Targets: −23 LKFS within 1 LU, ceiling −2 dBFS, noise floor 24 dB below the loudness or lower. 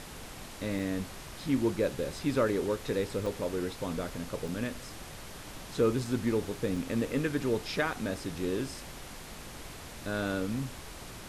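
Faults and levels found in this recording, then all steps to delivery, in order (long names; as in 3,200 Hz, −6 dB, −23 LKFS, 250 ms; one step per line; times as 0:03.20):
number of dropouts 4; longest dropout 3.3 ms; background noise floor −45 dBFS; target noise floor −57 dBFS; integrated loudness −32.5 LKFS; sample peak −15.5 dBFS; target loudness −23.0 LKFS
→ repair the gap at 0:00.79/0:03.26/0:04.48/0:06.76, 3.3 ms
noise reduction from a noise print 12 dB
level +9.5 dB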